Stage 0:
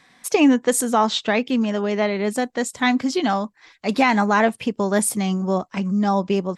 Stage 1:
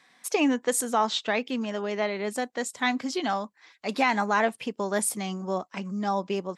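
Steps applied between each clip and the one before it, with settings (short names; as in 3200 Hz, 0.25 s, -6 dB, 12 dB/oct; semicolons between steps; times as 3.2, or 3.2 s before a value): HPF 350 Hz 6 dB/oct; gain -5 dB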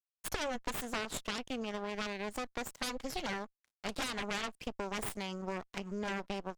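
crossover distortion -46 dBFS; added harmonics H 7 -10 dB, 8 -8 dB, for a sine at -9.5 dBFS; compressor 5:1, threshold -27 dBFS, peak gain reduction 11.5 dB; gain -7 dB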